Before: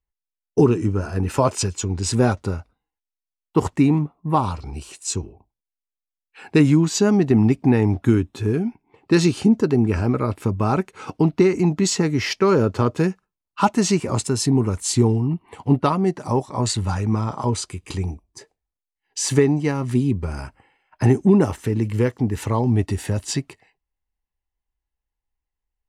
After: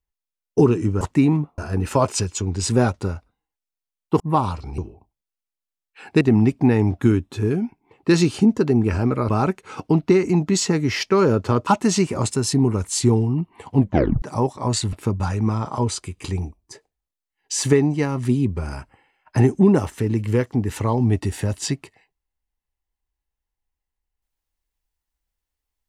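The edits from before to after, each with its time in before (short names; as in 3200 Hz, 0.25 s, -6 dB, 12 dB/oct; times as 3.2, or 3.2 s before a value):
3.63–4.2 move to 1.01
4.78–5.17 cut
6.6–7.24 cut
10.32–10.59 move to 16.86
12.97–13.6 cut
15.7 tape stop 0.45 s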